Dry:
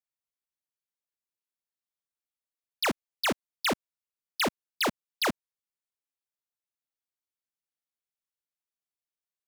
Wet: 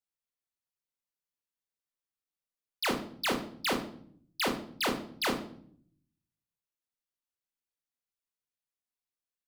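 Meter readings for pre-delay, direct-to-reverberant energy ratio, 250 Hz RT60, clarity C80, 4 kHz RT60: 21 ms, 2.0 dB, 0.95 s, 13.0 dB, 0.45 s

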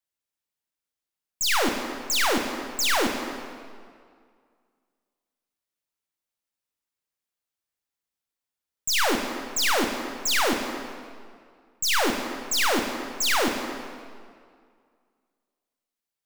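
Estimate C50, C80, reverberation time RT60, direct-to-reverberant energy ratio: 5.0 dB, 6.0 dB, 2.1 s, 4.0 dB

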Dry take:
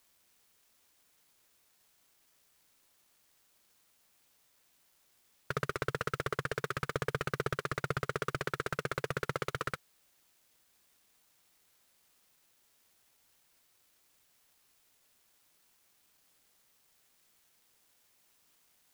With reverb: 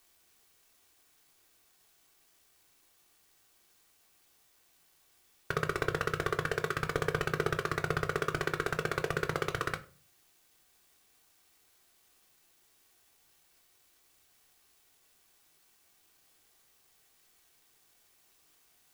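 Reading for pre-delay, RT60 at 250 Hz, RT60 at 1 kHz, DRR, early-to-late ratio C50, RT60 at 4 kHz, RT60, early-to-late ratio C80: 3 ms, 0.55 s, 0.35 s, 5.5 dB, 17.0 dB, 0.25 s, 0.40 s, 22.0 dB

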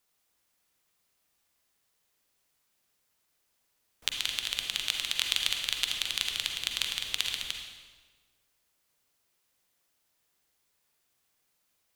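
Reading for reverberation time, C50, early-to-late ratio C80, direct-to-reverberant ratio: 1.4 s, 3.5 dB, 5.5 dB, 2.5 dB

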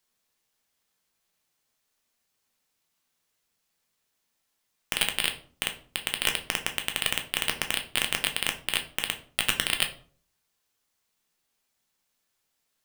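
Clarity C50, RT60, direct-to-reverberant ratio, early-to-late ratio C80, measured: 12.0 dB, 0.45 s, 4.5 dB, 17.0 dB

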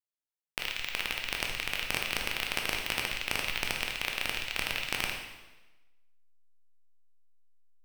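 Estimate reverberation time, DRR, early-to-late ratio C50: 1.1 s, 1.0 dB, 4.0 dB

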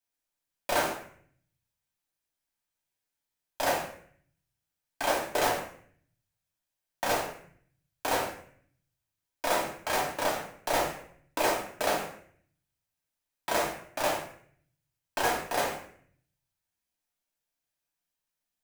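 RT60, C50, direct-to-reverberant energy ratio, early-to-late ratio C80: 0.60 s, 5.5 dB, −2.0 dB, 9.0 dB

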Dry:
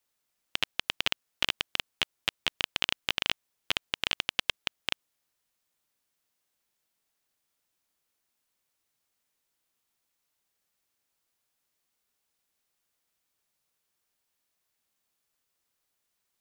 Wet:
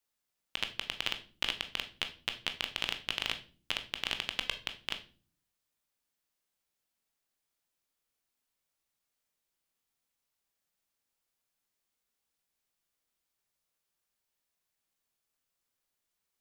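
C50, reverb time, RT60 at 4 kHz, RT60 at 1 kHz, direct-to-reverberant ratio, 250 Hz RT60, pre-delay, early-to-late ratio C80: 13.0 dB, 0.40 s, 0.35 s, 0.35 s, 7.0 dB, 0.80 s, 16 ms, 18.5 dB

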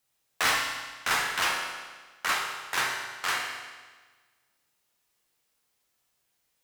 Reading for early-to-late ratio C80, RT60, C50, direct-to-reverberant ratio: 4.5 dB, 1.4 s, 2.0 dB, −1.0 dB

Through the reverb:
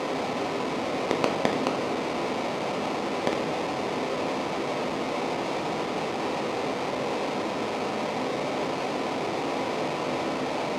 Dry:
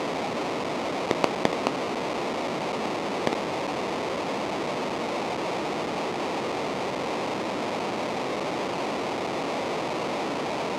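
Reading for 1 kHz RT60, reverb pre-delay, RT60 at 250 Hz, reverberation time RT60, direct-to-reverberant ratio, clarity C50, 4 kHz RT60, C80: 0.80 s, 4 ms, 1.2 s, 0.95 s, 3.0 dB, 8.5 dB, 0.70 s, 11.0 dB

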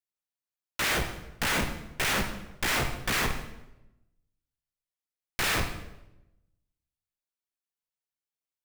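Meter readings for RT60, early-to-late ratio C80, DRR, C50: 0.95 s, 10.0 dB, 6.5 dB, 7.5 dB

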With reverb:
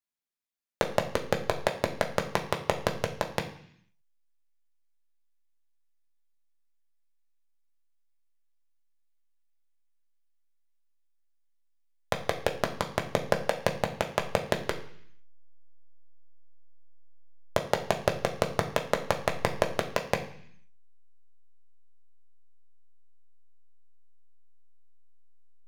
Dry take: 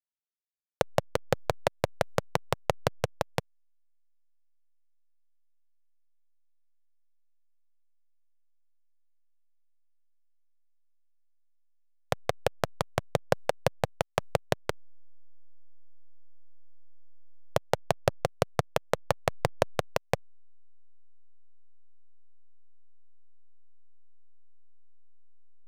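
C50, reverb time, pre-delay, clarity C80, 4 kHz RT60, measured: 11.0 dB, 0.65 s, 3 ms, 14.0 dB, 0.80 s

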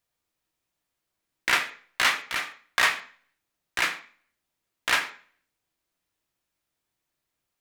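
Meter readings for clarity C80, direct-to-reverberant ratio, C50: 17.0 dB, 5.0 dB, 12.5 dB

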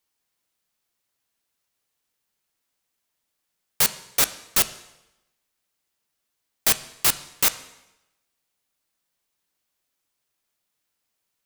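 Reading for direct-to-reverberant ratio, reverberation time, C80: 12.0 dB, 0.90 s, 17.0 dB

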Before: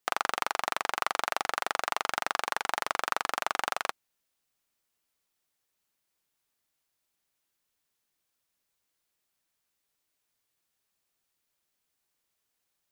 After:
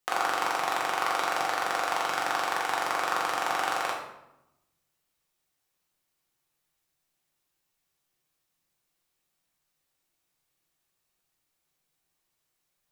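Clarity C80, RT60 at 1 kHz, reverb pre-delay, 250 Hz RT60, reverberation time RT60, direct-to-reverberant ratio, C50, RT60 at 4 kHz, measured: 6.5 dB, 0.85 s, 5 ms, 1.3 s, 0.90 s, −3.5 dB, 3.0 dB, 0.60 s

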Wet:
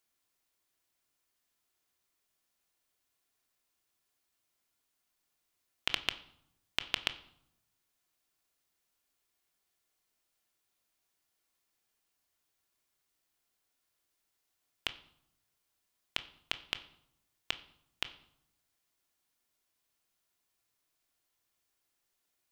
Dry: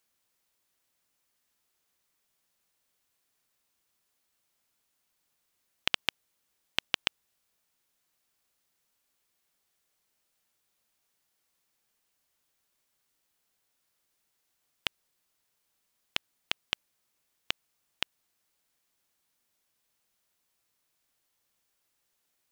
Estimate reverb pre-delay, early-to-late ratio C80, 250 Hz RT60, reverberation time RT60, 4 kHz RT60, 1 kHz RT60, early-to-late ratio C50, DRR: 3 ms, 18.5 dB, 1.0 s, 0.75 s, 0.55 s, 0.75 s, 15.5 dB, 8.5 dB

